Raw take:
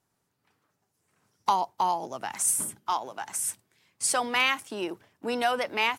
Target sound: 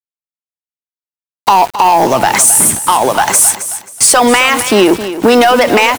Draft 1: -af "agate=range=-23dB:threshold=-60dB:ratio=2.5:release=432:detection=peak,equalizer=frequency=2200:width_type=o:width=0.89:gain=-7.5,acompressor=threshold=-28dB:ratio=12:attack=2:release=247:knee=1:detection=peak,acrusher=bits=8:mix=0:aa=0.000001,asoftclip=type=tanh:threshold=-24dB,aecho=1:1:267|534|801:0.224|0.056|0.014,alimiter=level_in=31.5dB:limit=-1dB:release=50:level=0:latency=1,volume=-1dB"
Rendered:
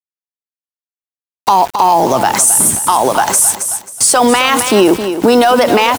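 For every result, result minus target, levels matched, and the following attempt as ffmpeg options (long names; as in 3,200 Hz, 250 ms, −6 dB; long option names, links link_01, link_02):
soft clipping: distortion −11 dB; 2,000 Hz band −3.0 dB
-af "agate=range=-23dB:threshold=-60dB:ratio=2.5:release=432:detection=peak,equalizer=frequency=2200:width_type=o:width=0.89:gain=-7.5,acompressor=threshold=-28dB:ratio=12:attack=2:release=247:knee=1:detection=peak,acrusher=bits=8:mix=0:aa=0.000001,asoftclip=type=tanh:threshold=-31.5dB,aecho=1:1:267|534|801:0.224|0.056|0.014,alimiter=level_in=31.5dB:limit=-1dB:release=50:level=0:latency=1,volume=-1dB"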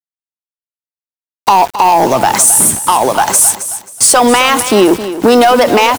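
2,000 Hz band −3.0 dB
-af "agate=range=-23dB:threshold=-60dB:ratio=2.5:release=432:detection=peak,acompressor=threshold=-28dB:ratio=12:attack=2:release=247:knee=1:detection=peak,acrusher=bits=8:mix=0:aa=0.000001,asoftclip=type=tanh:threshold=-31.5dB,aecho=1:1:267|534|801:0.224|0.056|0.014,alimiter=level_in=31.5dB:limit=-1dB:release=50:level=0:latency=1,volume=-1dB"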